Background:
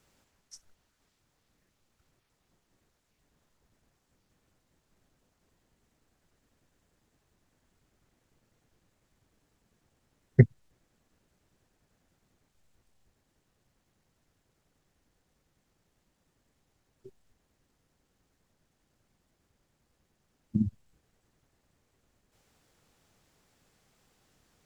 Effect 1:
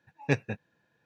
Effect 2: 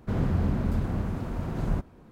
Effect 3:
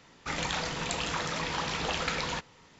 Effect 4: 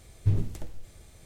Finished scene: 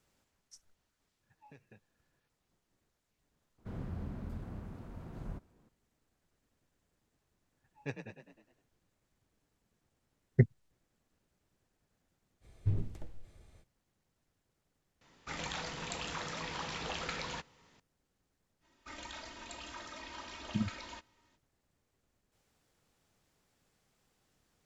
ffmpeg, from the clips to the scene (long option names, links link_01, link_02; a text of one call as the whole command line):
ffmpeg -i bed.wav -i cue0.wav -i cue1.wav -i cue2.wav -i cue3.wav -filter_complex "[1:a]asplit=2[link_01][link_02];[3:a]asplit=2[link_03][link_04];[0:a]volume=-6.5dB[link_05];[link_01]acompressor=threshold=-44dB:ratio=6:attack=3.2:release=140:knee=1:detection=peak[link_06];[link_02]asplit=7[link_07][link_08][link_09][link_10][link_11][link_12][link_13];[link_08]adelay=103,afreqshift=36,volume=-8dB[link_14];[link_09]adelay=206,afreqshift=72,volume=-13.8dB[link_15];[link_10]adelay=309,afreqshift=108,volume=-19.7dB[link_16];[link_11]adelay=412,afreqshift=144,volume=-25.5dB[link_17];[link_12]adelay=515,afreqshift=180,volume=-31.4dB[link_18];[link_13]adelay=618,afreqshift=216,volume=-37.2dB[link_19];[link_07][link_14][link_15][link_16][link_17][link_18][link_19]amix=inputs=7:normalize=0[link_20];[4:a]lowpass=frequency=2800:poles=1[link_21];[link_04]aecho=1:1:3.2:1[link_22];[link_06]atrim=end=1.05,asetpts=PTS-STARTPTS,volume=-10.5dB,afade=type=in:duration=0.004:curve=hsin,afade=type=out:start_time=1.046:duration=0.004:curve=hsin,adelay=1230[link_23];[2:a]atrim=end=2.11,asetpts=PTS-STARTPTS,volume=-15.5dB,afade=type=in:duration=0.004:curve=hsin,afade=type=out:start_time=2.106:duration=0.004:curve=hsin,adelay=3580[link_24];[link_20]atrim=end=1.05,asetpts=PTS-STARTPTS,volume=-14.5dB,afade=type=in:duration=0.004:curve=hsin,afade=type=out:start_time=1.046:duration=0.004:curve=hsin,adelay=7570[link_25];[link_21]atrim=end=1.25,asetpts=PTS-STARTPTS,volume=-7.5dB,afade=type=in:duration=0.05,afade=type=out:start_time=1.2:duration=0.05,adelay=12400[link_26];[link_03]atrim=end=2.79,asetpts=PTS-STARTPTS,volume=-8dB,afade=type=in:duration=0.004:curve=hsin,afade=type=out:start_time=2.786:duration=0.004:curve=hsin,adelay=15010[link_27];[link_22]atrim=end=2.79,asetpts=PTS-STARTPTS,volume=-17.5dB,afade=type=in:duration=0.05,afade=type=out:start_time=2.74:duration=0.05,adelay=820260S[link_28];[link_05][link_23][link_24][link_25][link_26][link_27][link_28]amix=inputs=7:normalize=0" out.wav